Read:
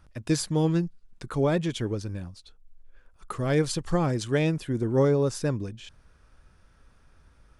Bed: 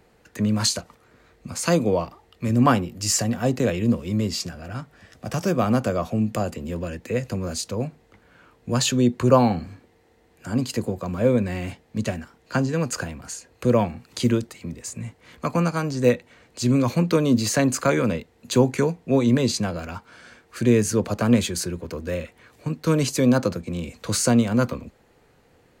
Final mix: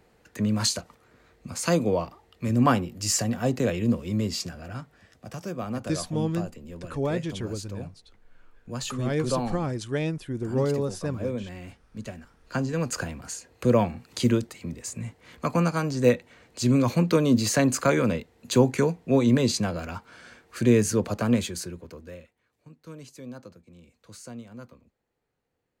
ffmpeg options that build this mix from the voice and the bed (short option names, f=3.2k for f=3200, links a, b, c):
-filter_complex "[0:a]adelay=5600,volume=-3.5dB[a];[1:a]volume=7dB,afade=t=out:st=4.62:d=0.75:silence=0.375837,afade=t=in:st=12.13:d=0.95:silence=0.316228,afade=t=out:st=20.81:d=1.54:silence=0.0891251[b];[a][b]amix=inputs=2:normalize=0"